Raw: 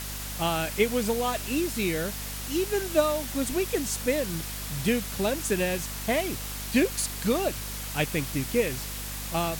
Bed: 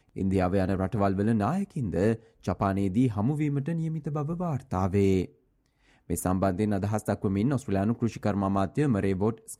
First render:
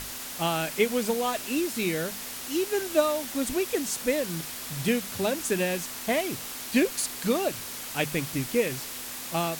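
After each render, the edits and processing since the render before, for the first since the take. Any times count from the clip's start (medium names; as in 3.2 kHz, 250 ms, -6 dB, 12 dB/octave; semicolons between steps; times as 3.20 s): hum notches 50/100/150/200 Hz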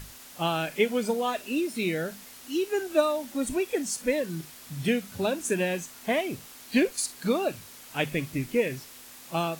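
noise print and reduce 10 dB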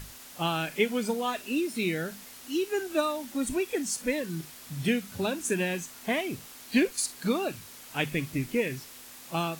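dynamic bell 580 Hz, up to -6 dB, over -39 dBFS, Q 2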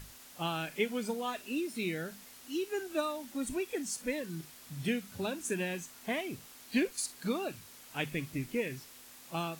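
trim -6 dB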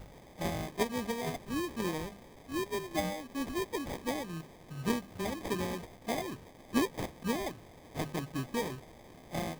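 sample-rate reducer 1.4 kHz, jitter 0%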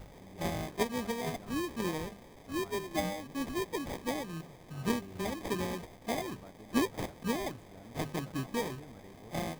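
add bed -27.5 dB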